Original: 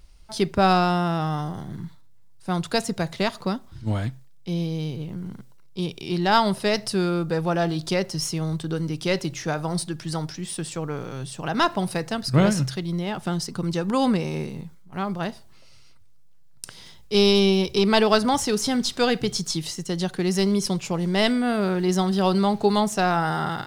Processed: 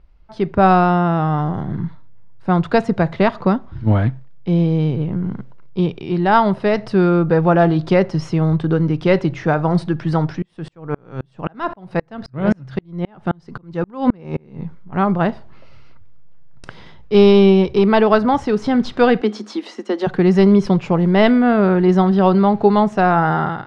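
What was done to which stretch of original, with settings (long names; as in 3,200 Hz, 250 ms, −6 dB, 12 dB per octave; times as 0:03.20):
0:10.42–0:14.63: tremolo with a ramp in dB swelling 3.8 Hz, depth 38 dB
0:19.21–0:20.07: Chebyshev high-pass filter 210 Hz, order 8
whole clip: low-pass filter 1,800 Hz 12 dB per octave; automatic gain control gain up to 11.5 dB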